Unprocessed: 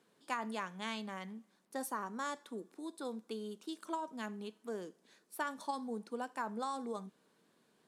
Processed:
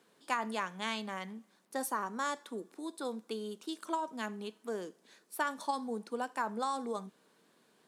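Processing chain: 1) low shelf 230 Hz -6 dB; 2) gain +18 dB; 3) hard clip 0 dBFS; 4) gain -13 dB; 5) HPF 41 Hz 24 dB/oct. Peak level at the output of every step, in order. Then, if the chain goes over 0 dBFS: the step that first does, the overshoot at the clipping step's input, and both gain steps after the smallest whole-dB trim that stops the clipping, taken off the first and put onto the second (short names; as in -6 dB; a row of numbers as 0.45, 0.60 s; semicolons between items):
-23.0, -5.0, -5.0, -18.0, -18.0 dBFS; no overload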